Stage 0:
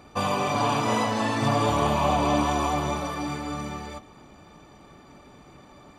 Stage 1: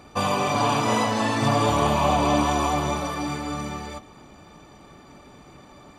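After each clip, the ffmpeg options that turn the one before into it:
ffmpeg -i in.wav -af "equalizer=frequency=8100:width_type=o:width=2:gain=2,volume=2dB" out.wav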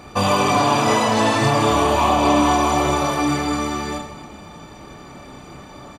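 ffmpeg -i in.wav -filter_complex "[0:a]alimiter=limit=-14.5dB:level=0:latency=1:release=357,asplit=2[link_01][link_02];[link_02]aecho=0:1:30|78|154.8|277.7|474.3:0.631|0.398|0.251|0.158|0.1[link_03];[link_01][link_03]amix=inputs=2:normalize=0,acontrast=66" out.wav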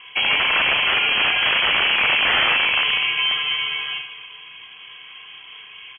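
ffmpeg -i in.wav -af "aeval=exprs='(mod(3.16*val(0)+1,2)-1)/3.16':channel_layout=same,lowshelf=frequency=160:gain=-6,lowpass=frequency=2900:width_type=q:width=0.5098,lowpass=frequency=2900:width_type=q:width=0.6013,lowpass=frequency=2900:width_type=q:width=0.9,lowpass=frequency=2900:width_type=q:width=2.563,afreqshift=-3400" out.wav

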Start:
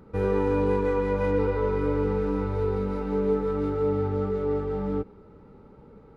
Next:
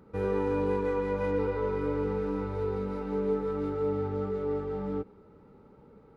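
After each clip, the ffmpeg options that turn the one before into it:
ffmpeg -i in.wav -af "lowshelf=frequency=74:gain=-7.5,volume=-4dB" out.wav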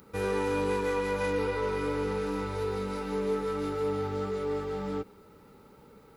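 ffmpeg -i in.wav -filter_complex "[0:a]asplit=2[link_01][link_02];[link_02]asoftclip=type=tanh:threshold=-28.5dB,volume=-6dB[link_03];[link_01][link_03]amix=inputs=2:normalize=0,crystalizer=i=9:c=0,volume=-4.5dB" out.wav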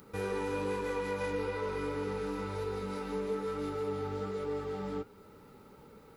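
ffmpeg -i in.wav -af "acompressor=threshold=-40dB:ratio=1.5,flanger=delay=6.6:depth=7.5:regen=-67:speed=1.1:shape=triangular,volume=4dB" out.wav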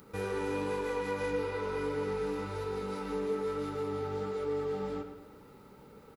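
ffmpeg -i in.wav -filter_complex "[0:a]asplit=2[link_01][link_02];[link_02]adelay=110,lowpass=frequency=4600:poles=1,volume=-9dB,asplit=2[link_03][link_04];[link_04]adelay=110,lowpass=frequency=4600:poles=1,volume=0.54,asplit=2[link_05][link_06];[link_06]adelay=110,lowpass=frequency=4600:poles=1,volume=0.54,asplit=2[link_07][link_08];[link_08]adelay=110,lowpass=frequency=4600:poles=1,volume=0.54,asplit=2[link_09][link_10];[link_10]adelay=110,lowpass=frequency=4600:poles=1,volume=0.54,asplit=2[link_11][link_12];[link_12]adelay=110,lowpass=frequency=4600:poles=1,volume=0.54[link_13];[link_01][link_03][link_05][link_07][link_09][link_11][link_13]amix=inputs=7:normalize=0" out.wav

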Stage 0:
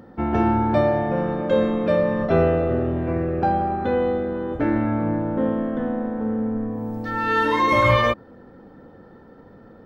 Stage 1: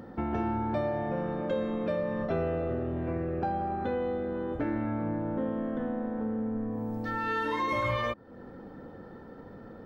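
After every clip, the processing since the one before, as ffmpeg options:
ffmpeg -i in.wav -af "acompressor=threshold=-33dB:ratio=2.5" out.wav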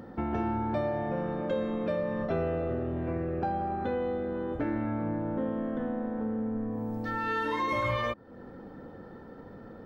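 ffmpeg -i in.wav -af anull out.wav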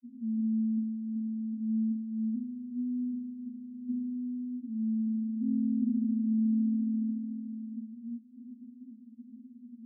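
ffmpeg -i in.wav -af "asuperpass=centerf=240:order=20:qfactor=5.1,volume=6dB" out.wav

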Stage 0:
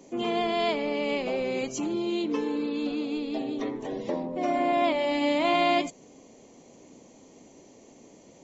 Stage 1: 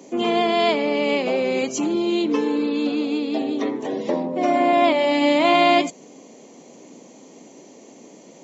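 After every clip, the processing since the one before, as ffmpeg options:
ffmpeg -i in.wav -af "highpass=frequency=160:width=0.5412,highpass=frequency=160:width=1.3066,volume=7.5dB" out.wav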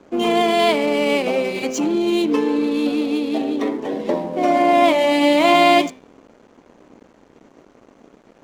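ffmpeg -i in.wav -af "bandreject=frequency=129:width_type=h:width=4,bandreject=frequency=258:width_type=h:width=4,bandreject=frequency=387:width_type=h:width=4,bandreject=frequency=516:width_type=h:width=4,bandreject=frequency=645:width_type=h:width=4,bandreject=frequency=774:width_type=h:width=4,bandreject=frequency=903:width_type=h:width=4,bandreject=frequency=1032:width_type=h:width=4,bandreject=frequency=1161:width_type=h:width=4,bandreject=frequency=1290:width_type=h:width=4,bandreject=frequency=1419:width_type=h:width=4,bandreject=frequency=1548:width_type=h:width=4,bandreject=frequency=1677:width_type=h:width=4,bandreject=frequency=1806:width_type=h:width=4,bandreject=frequency=1935:width_type=h:width=4,bandreject=frequency=2064:width_type=h:width=4,bandreject=frequency=2193:width_type=h:width=4,bandreject=frequency=2322:width_type=h:width=4,bandreject=frequency=2451:width_type=h:width=4,bandreject=frequency=2580:width_type=h:width=4,bandreject=frequency=2709:width_type=h:width=4,bandreject=frequency=2838:width_type=h:width=4,bandreject=frequency=2967:width_type=h:width=4,bandreject=frequency=3096:width_type=h:width=4,bandreject=frequency=3225:width_type=h:width=4,bandreject=frequency=3354:width_type=h:width=4,bandreject=frequency=3483:width_type=h:width=4,bandreject=frequency=3612:width_type=h:width=4,bandreject=frequency=3741:width_type=h:width=4,bandreject=frequency=3870:width_type=h:width=4,adynamicsmooth=sensitivity=8:basefreq=2300,aeval=exprs='sgn(val(0))*max(abs(val(0))-0.00398,0)':channel_layout=same,volume=3dB" out.wav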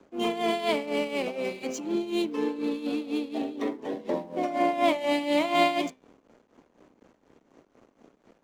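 ffmpeg -i in.wav -filter_complex "[0:a]tremolo=f=4.1:d=0.74,acrossover=split=160|980|1600[link_01][link_02][link_03][link_04];[link_01]acrusher=bits=4:mode=log:mix=0:aa=0.000001[link_05];[link_05][link_02][link_03][link_04]amix=inputs=4:normalize=0,volume=-7dB" out.wav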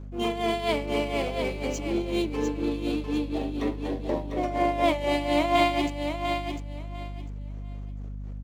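ffmpeg -i in.wav -filter_complex "[0:a]aeval=exprs='val(0)+0.0126*(sin(2*PI*50*n/s)+sin(2*PI*2*50*n/s)/2+sin(2*PI*3*50*n/s)/3+sin(2*PI*4*50*n/s)/4+sin(2*PI*5*50*n/s)/5)':channel_layout=same,asplit=2[link_01][link_02];[link_02]aecho=0:1:699|1398|2097:0.473|0.0994|0.0209[link_03];[link_01][link_03]amix=inputs=2:normalize=0" out.wav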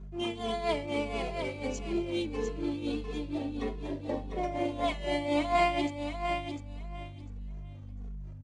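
ffmpeg -i in.wav -filter_complex "[0:a]aresample=22050,aresample=44100,asplit=2[link_01][link_02];[link_02]adelay=2.4,afreqshift=-1.6[link_03];[link_01][link_03]amix=inputs=2:normalize=1,volume=-2.5dB" out.wav

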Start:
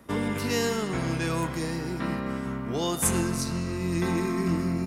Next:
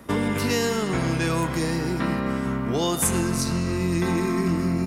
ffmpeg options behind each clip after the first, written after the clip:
ffmpeg -i in.wav -af "acompressor=threshold=-28dB:ratio=2.5,volume=7dB" out.wav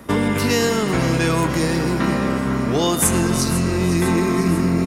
ffmpeg -i in.wav -filter_complex "[0:a]asplit=8[link_01][link_02][link_03][link_04][link_05][link_06][link_07][link_08];[link_02]adelay=499,afreqshift=40,volume=-12dB[link_09];[link_03]adelay=998,afreqshift=80,volume=-16.2dB[link_10];[link_04]adelay=1497,afreqshift=120,volume=-20.3dB[link_11];[link_05]adelay=1996,afreqshift=160,volume=-24.5dB[link_12];[link_06]adelay=2495,afreqshift=200,volume=-28.6dB[link_13];[link_07]adelay=2994,afreqshift=240,volume=-32.8dB[link_14];[link_08]adelay=3493,afreqshift=280,volume=-36.9dB[link_15];[link_01][link_09][link_10][link_11][link_12][link_13][link_14][link_15]amix=inputs=8:normalize=0,volume=5dB" out.wav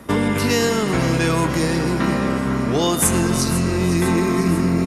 ffmpeg -i in.wav -ar 44100 -c:a mp2 -b:a 192k out.mp2

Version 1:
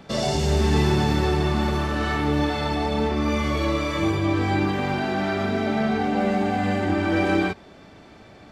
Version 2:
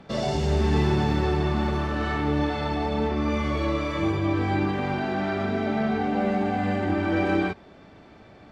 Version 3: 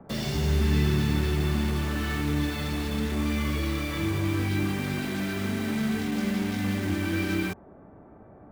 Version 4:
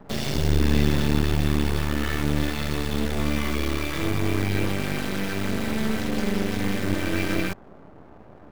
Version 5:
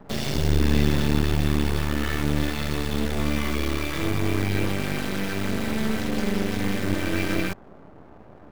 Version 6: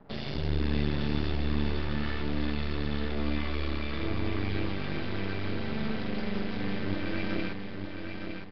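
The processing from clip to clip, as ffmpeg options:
ffmpeg -i in.wav -af "aemphasis=mode=reproduction:type=50kf,volume=-2dB" out.wav
ffmpeg -i in.wav -filter_complex "[0:a]acrossover=split=320|420|1400[link_01][link_02][link_03][link_04];[link_02]acompressor=threshold=-43dB:ratio=6[link_05];[link_03]aeval=exprs='0.0126*(abs(mod(val(0)/0.0126+3,4)-2)-1)':channel_layout=same[link_06];[link_04]acrusher=bits=6:mix=0:aa=0.000001[link_07];[link_01][link_05][link_06][link_07]amix=inputs=4:normalize=0" out.wav
ffmpeg -i in.wav -af "aeval=exprs='max(val(0),0)':channel_layout=same,volume=6.5dB" out.wav
ffmpeg -i in.wav -af anull out.wav
ffmpeg -i in.wav -filter_complex "[0:a]asplit=2[link_01][link_02];[link_02]aecho=0:1:911|1822|2733|3644:0.501|0.175|0.0614|0.0215[link_03];[link_01][link_03]amix=inputs=2:normalize=0,aresample=11025,aresample=44100,volume=-8dB" out.wav

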